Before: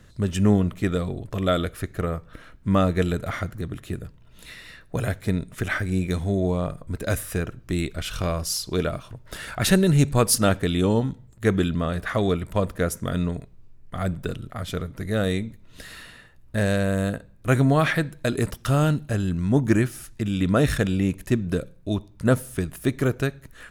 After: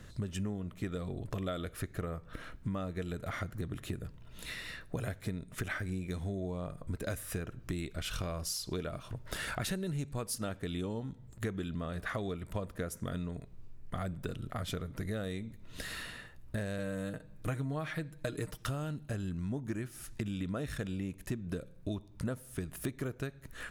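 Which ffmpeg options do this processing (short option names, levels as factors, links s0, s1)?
-filter_complex "[0:a]asettb=1/sr,asplit=3[s0][s1][s2];[s0]atrim=end=16.784[s3];[s1]atrim=start=16.78:end=18.66,asetpts=PTS-STARTPTS,afade=t=in:d=0.004:c=qsin,afade=t=out:st=1.876:d=0.004:c=qsin,aecho=1:1:6.5:0.65,atrim=end_sample=82908[s4];[s2]atrim=start=18.656[s5];[s3][s4]acrossfade=d=0.004:c1=hsin:c2=qsin[s6];[s6][s5]acrossfade=d=0.004:c1=qsin:c2=hsin,acompressor=threshold=0.02:ratio=8"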